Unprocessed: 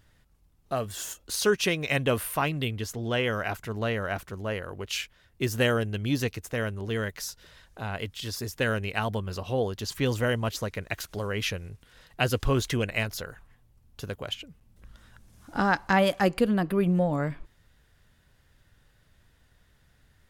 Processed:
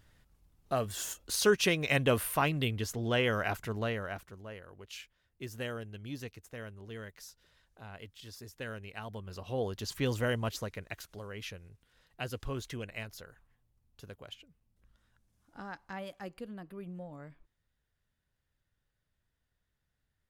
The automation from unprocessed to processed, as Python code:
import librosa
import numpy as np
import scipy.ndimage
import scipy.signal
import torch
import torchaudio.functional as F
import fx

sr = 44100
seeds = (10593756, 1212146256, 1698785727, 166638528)

y = fx.gain(x, sr, db=fx.line((3.67, -2.0), (4.5, -14.5), (9.02, -14.5), (9.71, -5.0), (10.48, -5.0), (11.26, -13.0), (14.15, -13.0), (15.55, -20.0)))